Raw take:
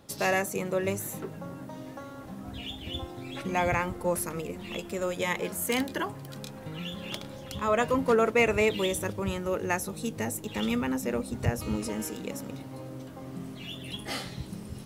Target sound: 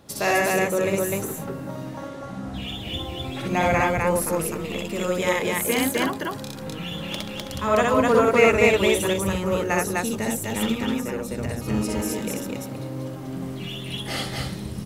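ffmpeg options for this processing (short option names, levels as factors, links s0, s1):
-filter_complex "[0:a]asettb=1/sr,asplit=3[s0][s1][s2];[s0]atrim=end=1.834[s3];[s1]atrim=start=1.83:end=2.56,asetpts=PTS-STARTPTS,afade=t=in:d=0.004:c=qsin,afade=t=out:st=0.726:d=0.004:c=qsin,lowpass=8900[s4];[s2]atrim=start=2.556[s5];[s3][s4]acrossfade=d=0.004:c1=hsin:c2=qsin[s6];[s6][s5]acrossfade=d=0.004:c1=qsin:c2=hsin,asettb=1/sr,asplit=3[s7][s8][s9];[s7]atrim=end=10.684[s10];[s8]atrim=start=10.68:end=11.68,asetpts=PTS-STARTPTS,afade=t=in:d=0.004:c=qsin,afade=t=out:st=0.996:d=0.004:c=qsin,acompressor=threshold=0.0251:ratio=5[s11];[s9]atrim=start=11.676[s12];[s10][s11]acrossfade=d=0.004:c1=hsin:c2=qsin[s13];[s13][s12]acrossfade=d=0.004:c1=qsin:c2=hsin,asplit=2[s14][s15];[s15]aecho=0:1:61.22|253.6:0.891|0.891[s16];[s14][s16]amix=inputs=2:normalize=0,volume=1.41"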